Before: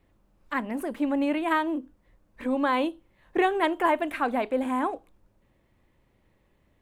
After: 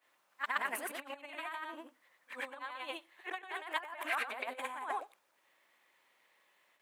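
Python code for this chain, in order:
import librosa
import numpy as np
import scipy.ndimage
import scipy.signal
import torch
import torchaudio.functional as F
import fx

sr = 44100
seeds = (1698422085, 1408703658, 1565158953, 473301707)

y = fx.frame_reverse(x, sr, frame_ms=243.0)
y = fx.over_compress(y, sr, threshold_db=-34.0, ratio=-0.5)
y = scipy.signal.sosfilt(scipy.signal.butter(2, 1100.0, 'highpass', fs=sr, output='sos'), y)
y = F.gain(torch.from_numpy(y), 3.5).numpy()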